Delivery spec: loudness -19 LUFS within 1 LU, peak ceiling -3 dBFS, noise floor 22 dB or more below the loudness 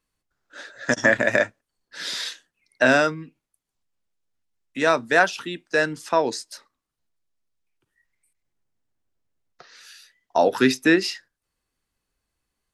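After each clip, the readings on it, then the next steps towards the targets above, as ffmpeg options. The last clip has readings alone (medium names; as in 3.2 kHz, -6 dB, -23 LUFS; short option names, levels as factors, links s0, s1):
loudness -21.5 LUFS; peak level -3.5 dBFS; loudness target -19.0 LUFS
-> -af "volume=1.33,alimiter=limit=0.708:level=0:latency=1"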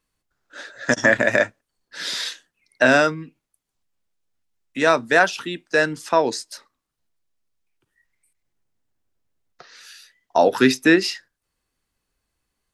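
loudness -19.5 LUFS; peak level -3.0 dBFS; noise floor -80 dBFS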